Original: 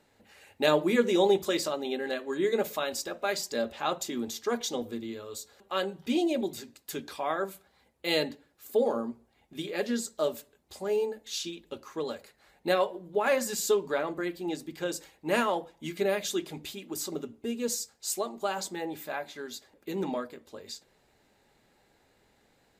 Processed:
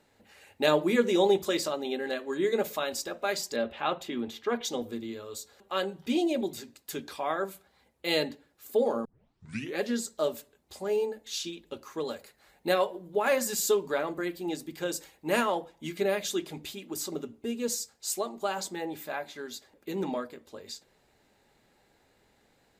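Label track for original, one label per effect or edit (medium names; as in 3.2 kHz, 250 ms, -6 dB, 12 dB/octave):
3.560000	4.650000	resonant high shelf 4.2 kHz -11 dB, Q 1.5
9.050000	9.050000	tape start 0.74 s
11.810000	15.410000	treble shelf 8.8 kHz +6 dB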